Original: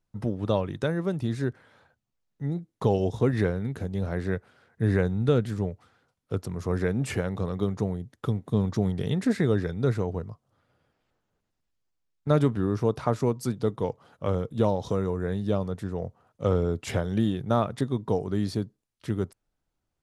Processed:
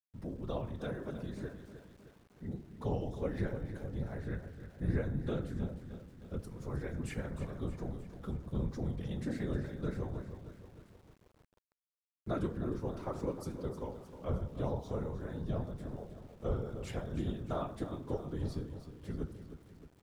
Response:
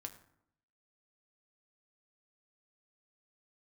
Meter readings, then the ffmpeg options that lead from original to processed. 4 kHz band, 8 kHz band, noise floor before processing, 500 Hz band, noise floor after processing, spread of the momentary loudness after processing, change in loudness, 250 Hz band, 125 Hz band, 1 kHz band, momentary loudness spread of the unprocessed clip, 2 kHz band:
-13.0 dB, -12.5 dB, -81 dBFS, -13.0 dB, -70 dBFS, 12 LU, -11.5 dB, -11.5 dB, -11.0 dB, -12.0 dB, 9 LU, -12.0 dB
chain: -filter_complex "[1:a]atrim=start_sample=2205,afade=t=out:st=0.32:d=0.01,atrim=end_sample=14553[a];[0:a][a]afir=irnorm=-1:irlink=0,afftfilt=real='hypot(re,im)*cos(2*PI*random(0))':imag='hypot(re,im)*sin(2*PI*random(1))':win_size=512:overlap=0.75,aecho=1:1:310|620|930|1240|1550|1860:0.266|0.144|0.0776|0.0419|0.0226|0.0122,aeval=exprs='val(0)*gte(abs(val(0)),0.00126)':c=same,volume=-3dB"

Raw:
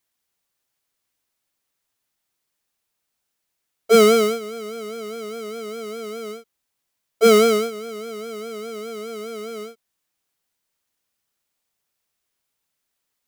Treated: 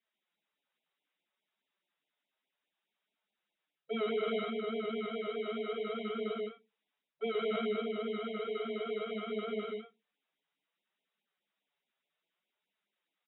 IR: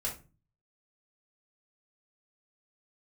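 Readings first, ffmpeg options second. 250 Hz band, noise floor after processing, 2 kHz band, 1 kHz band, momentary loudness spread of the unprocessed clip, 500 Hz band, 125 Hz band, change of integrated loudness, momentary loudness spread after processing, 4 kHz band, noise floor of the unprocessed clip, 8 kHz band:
-13.0 dB, under -85 dBFS, -13.0 dB, -14.5 dB, 18 LU, -15.0 dB, n/a, -17.5 dB, 6 LU, -14.5 dB, -78 dBFS, under -40 dB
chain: -filter_complex "[0:a]aecho=1:1:102|151.6:0.447|0.562,flanger=delay=4.3:depth=3.5:regen=-29:speed=0.63:shape=triangular,asplit=2[a][b];[b]adelay=14,volume=-11dB[c];[a][c]amix=inputs=2:normalize=0,asplit=2[d][e];[1:a]atrim=start_sample=2205[f];[e][f]afir=irnorm=-1:irlink=0,volume=-19dB[g];[d][g]amix=inputs=2:normalize=0,acontrast=82,afftfilt=real='re*between(b*sr/4096,160,3900)':imag='im*between(b*sr/4096,160,3900)':win_size=4096:overlap=0.75,areverse,acompressor=threshold=-21dB:ratio=12,areverse,afftfilt=real='re*(1-between(b*sr/1024,220*pow(1500/220,0.5+0.5*sin(2*PI*4.8*pts/sr))/1.41,220*pow(1500/220,0.5+0.5*sin(2*PI*4.8*pts/sr))*1.41))':imag='im*(1-between(b*sr/1024,220*pow(1500/220,0.5+0.5*sin(2*PI*4.8*pts/sr))/1.41,220*pow(1500/220,0.5+0.5*sin(2*PI*4.8*pts/sr))*1.41))':win_size=1024:overlap=0.75,volume=-9dB"

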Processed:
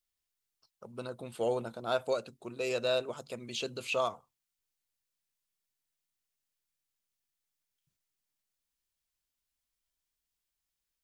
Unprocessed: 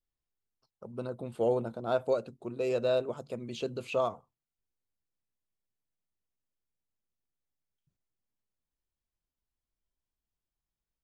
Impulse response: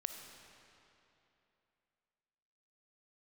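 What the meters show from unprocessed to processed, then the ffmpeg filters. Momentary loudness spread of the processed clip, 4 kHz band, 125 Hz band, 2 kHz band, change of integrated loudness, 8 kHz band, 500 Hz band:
12 LU, +7.0 dB, -5.5 dB, +5.0 dB, -2.0 dB, n/a, -3.0 dB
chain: -af "tiltshelf=f=1.2k:g=-7,volume=1.5dB"

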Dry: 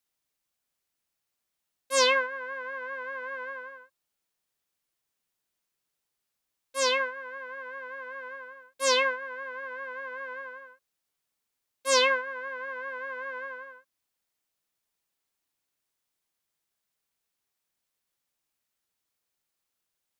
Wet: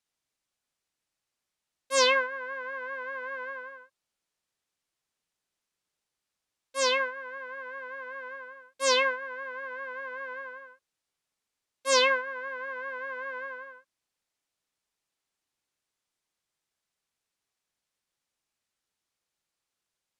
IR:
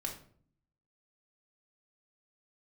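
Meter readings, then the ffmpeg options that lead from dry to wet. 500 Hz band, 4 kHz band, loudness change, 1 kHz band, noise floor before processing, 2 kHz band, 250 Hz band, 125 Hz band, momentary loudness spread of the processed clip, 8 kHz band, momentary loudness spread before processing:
0.0 dB, 0.0 dB, 0.0 dB, 0.0 dB, -84 dBFS, 0.0 dB, 0.0 dB, n/a, 18 LU, -1.0 dB, 18 LU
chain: -af "lowpass=9.2k"

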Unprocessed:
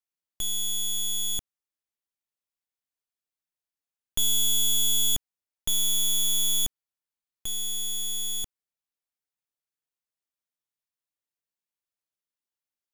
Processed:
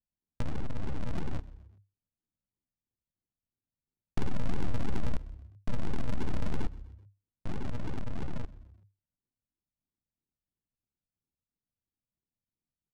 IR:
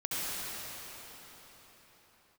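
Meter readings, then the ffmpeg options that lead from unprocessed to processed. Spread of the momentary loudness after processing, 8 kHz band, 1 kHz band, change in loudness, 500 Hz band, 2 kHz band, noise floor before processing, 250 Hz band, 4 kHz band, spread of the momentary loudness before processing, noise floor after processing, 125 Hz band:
13 LU, -35.5 dB, +8.0 dB, -14.0 dB, +10.0 dB, +2.5 dB, under -85 dBFS, +10.0 dB, -28.0 dB, 12 LU, under -85 dBFS, +9.5 dB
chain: -filter_complex "[0:a]acrossover=split=350[a][b];[b]acompressor=threshold=-32dB:ratio=3[c];[a][c]amix=inputs=2:normalize=0,aphaser=in_gain=1:out_gain=1:delay=4.3:decay=0.32:speed=1.7:type=sinusoidal,aresample=16000,acrusher=samples=34:mix=1:aa=0.000001:lfo=1:lforange=20.4:lforate=3,aresample=44100,adynamicsmooth=sensitivity=6.5:basefreq=1.2k,asplit=4[d][e][f][g];[e]adelay=127,afreqshift=33,volume=-21dB[h];[f]adelay=254,afreqshift=66,volume=-27.4dB[i];[g]adelay=381,afreqshift=99,volume=-33.8dB[j];[d][h][i][j]amix=inputs=4:normalize=0"

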